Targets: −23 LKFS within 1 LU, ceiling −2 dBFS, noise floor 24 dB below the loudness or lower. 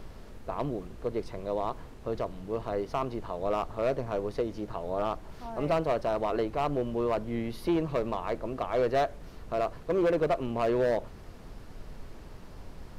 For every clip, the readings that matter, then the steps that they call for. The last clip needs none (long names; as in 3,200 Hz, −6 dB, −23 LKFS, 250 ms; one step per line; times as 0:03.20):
share of clipped samples 1.2%; peaks flattened at −21.0 dBFS; background noise floor −47 dBFS; target noise floor −55 dBFS; integrated loudness −31.0 LKFS; sample peak −21.0 dBFS; target loudness −23.0 LKFS
→ clipped peaks rebuilt −21 dBFS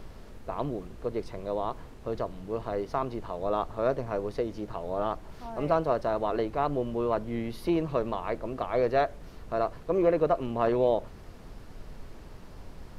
share of clipped samples 0.0%; background noise floor −47 dBFS; target noise floor −54 dBFS
→ noise reduction from a noise print 7 dB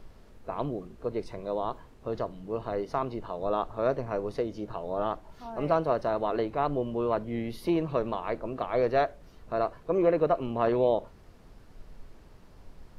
background noise floor −54 dBFS; target noise floor −55 dBFS
→ noise reduction from a noise print 6 dB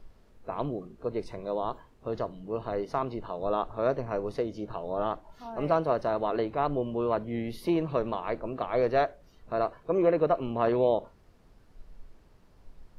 background noise floor −59 dBFS; integrated loudness −30.5 LKFS; sample peak −12.0 dBFS; target loudness −23.0 LKFS
→ level +7.5 dB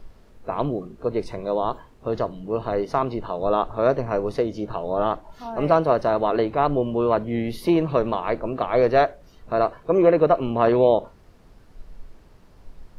integrated loudness −23.0 LKFS; sample peak −4.5 dBFS; background noise floor −52 dBFS